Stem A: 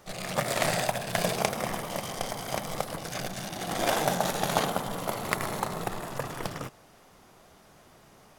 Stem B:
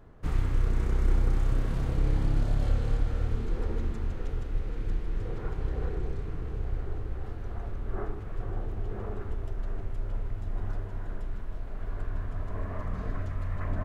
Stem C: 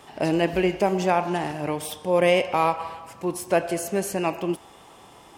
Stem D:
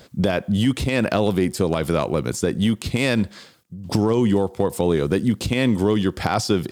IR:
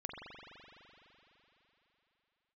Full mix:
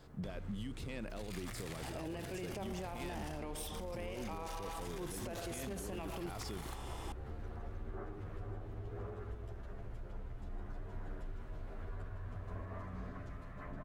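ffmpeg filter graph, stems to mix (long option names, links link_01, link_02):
-filter_complex "[0:a]acrusher=bits=10:mix=0:aa=0.000001,acompressor=threshold=-40dB:ratio=3,highpass=1300,adelay=1100,volume=-0.5dB[link_01];[1:a]highpass=frequency=49:poles=1,acompressor=threshold=-37dB:ratio=6,asplit=2[link_02][link_03];[link_03]adelay=10.8,afreqshift=0.27[link_04];[link_02][link_04]amix=inputs=2:normalize=1,volume=0dB[link_05];[2:a]acompressor=threshold=-31dB:ratio=5,adelay=1750,volume=1.5dB[link_06];[3:a]volume=-17dB,asplit=2[link_07][link_08];[link_08]apad=whole_len=418264[link_09];[link_01][link_09]sidechaingate=range=-33dB:threshold=-52dB:ratio=16:detection=peak[link_10];[link_10][link_06][link_07]amix=inputs=3:normalize=0,alimiter=level_in=6.5dB:limit=-24dB:level=0:latency=1:release=31,volume=-6.5dB,volume=0dB[link_11];[link_05][link_11]amix=inputs=2:normalize=0,alimiter=level_in=9dB:limit=-24dB:level=0:latency=1:release=225,volume=-9dB"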